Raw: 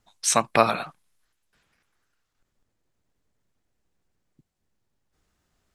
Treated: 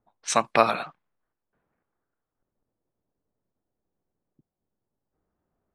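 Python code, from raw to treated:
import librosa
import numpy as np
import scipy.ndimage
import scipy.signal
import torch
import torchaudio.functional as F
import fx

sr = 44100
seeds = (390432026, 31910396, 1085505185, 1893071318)

y = fx.high_shelf(x, sr, hz=6800.0, db=-6.0)
y = fx.env_lowpass(y, sr, base_hz=830.0, full_db=-19.5)
y = fx.low_shelf(y, sr, hz=130.0, db=-10.5)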